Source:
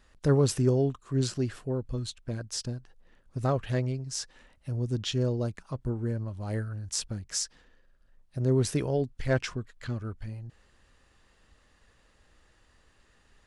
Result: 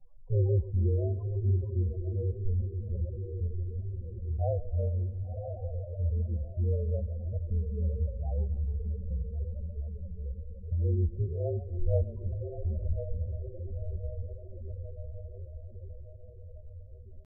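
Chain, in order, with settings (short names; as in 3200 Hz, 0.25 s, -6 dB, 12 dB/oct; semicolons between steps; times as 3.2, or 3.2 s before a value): fixed phaser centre 770 Hz, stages 4; on a send: diffused feedback echo 0.844 s, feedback 57%, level -7 dB; on the sum: frequency shift -38 Hz; LPF 1300 Hz 24 dB/oct; de-hum 291.7 Hz, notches 4; in parallel at -1 dB: compressor 10:1, threshold -38 dBFS, peak gain reduction 16.5 dB; on the sum: loudest bins only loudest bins 8; low shelf 62 Hz +7.5 dB; tempo 0.78×; warbling echo 0.141 s, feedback 53%, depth 105 cents, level -17 dB; gain -2 dB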